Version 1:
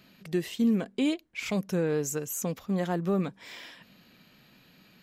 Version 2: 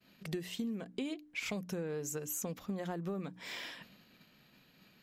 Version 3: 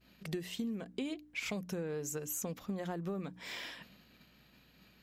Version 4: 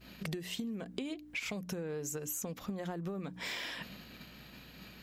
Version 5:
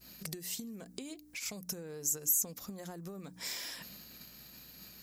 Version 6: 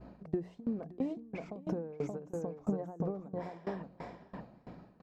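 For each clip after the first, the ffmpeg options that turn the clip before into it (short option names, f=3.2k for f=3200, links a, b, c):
-af "bandreject=f=60:t=h:w=6,bandreject=f=120:t=h:w=6,bandreject=f=180:t=h:w=6,bandreject=f=240:t=h:w=6,bandreject=f=300:t=h:w=6,agate=range=-33dB:threshold=-52dB:ratio=3:detection=peak,acompressor=threshold=-37dB:ratio=10,volume=1.5dB"
-af "aeval=exprs='val(0)+0.000282*(sin(2*PI*60*n/s)+sin(2*PI*2*60*n/s)/2+sin(2*PI*3*60*n/s)/3+sin(2*PI*4*60*n/s)/4+sin(2*PI*5*60*n/s)/5)':c=same"
-af "acompressor=threshold=-48dB:ratio=6,volume=11dB"
-af "aexciter=amount=5.9:drive=3.7:freq=4.5k,volume=-6dB"
-filter_complex "[0:a]lowpass=f=780:t=q:w=1.7,asplit=2[a][b];[b]aecho=0:1:576|1152|1728:0.562|0.135|0.0324[c];[a][c]amix=inputs=2:normalize=0,aeval=exprs='val(0)*pow(10,-23*if(lt(mod(3*n/s,1),2*abs(3)/1000),1-mod(3*n/s,1)/(2*abs(3)/1000),(mod(3*n/s,1)-2*abs(3)/1000)/(1-2*abs(3)/1000))/20)':c=same,volume=13.5dB"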